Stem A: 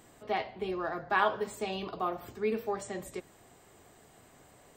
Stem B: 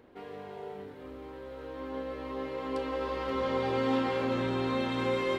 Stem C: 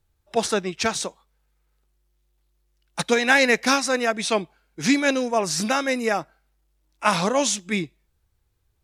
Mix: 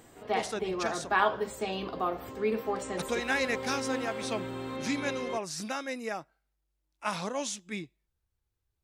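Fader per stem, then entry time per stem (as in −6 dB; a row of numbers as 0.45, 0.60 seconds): +1.5, −7.0, −12.5 decibels; 0.00, 0.00, 0.00 seconds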